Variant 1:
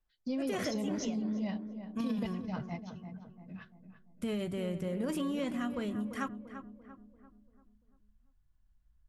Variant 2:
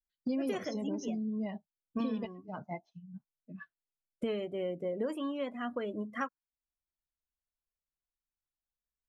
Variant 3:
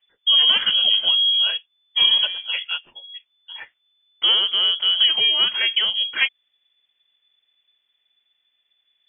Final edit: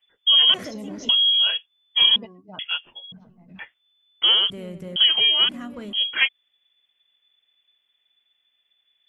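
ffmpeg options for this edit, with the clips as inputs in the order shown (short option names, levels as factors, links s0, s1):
-filter_complex "[0:a]asplit=4[s0][s1][s2][s3];[2:a]asplit=6[s4][s5][s6][s7][s8][s9];[s4]atrim=end=0.542[s10];[s0]atrim=start=0.538:end=1.092[s11];[s5]atrim=start=1.088:end=2.162[s12];[1:a]atrim=start=2.158:end=2.592[s13];[s6]atrim=start=2.588:end=3.122[s14];[s1]atrim=start=3.118:end=3.592[s15];[s7]atrim=start=3.588:end=4.502[s16];[s2]atrim=start=4.498:end=4.962[s17];[s8]atrim=start=4.958:end=5.492[s18];[s3]atrim=start=5.488:end=5.932[s19];[s9]atrim=start=5.928[s20];[s10][s11]acrossfade=d=0.004:c1=hsin:c2=hsin[s21];[s21][s12]acrossfade=d=0.004:c1=hsin:c2=hsin[s22];[s22][s13]acrossfade=d=0.004:c1=hsin:c2=hsin[s23];[s23][s14]acrossfade=d=0.004:c1=hsin:c2=hsin[s24];[s24][s15]acrossfade=d=0.004:c1=hsin:c2=hsin[s25];[s25][s16]acrossfade=d=0.004:c1=hsin:c2=hsin[s26];[s26][s17]acrossfade=d=0.004:c1=hsin:c2=hsin[s27];[s27][s18]acrossfade=d=0.004:c1=hsin:c2=hsin[s28];[s28][s19]acrossfade=d=0.004:c1=hsin:c2=hsin[s29];[s29][s20]acrossfade=d=0.004:c1=hsin:c2=hsin"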